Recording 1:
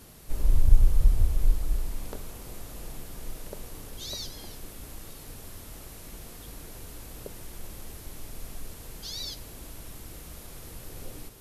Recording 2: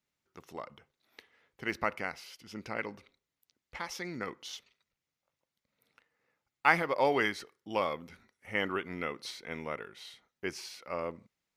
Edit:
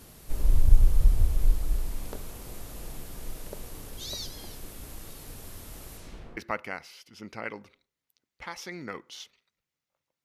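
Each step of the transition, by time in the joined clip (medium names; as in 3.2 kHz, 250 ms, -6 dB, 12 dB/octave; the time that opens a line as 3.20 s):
recording 1
5.97–6.37 s: low-pass 11 kHz -> 1.2 kHz
6.37 s: go over to recording 2 from 1.70 s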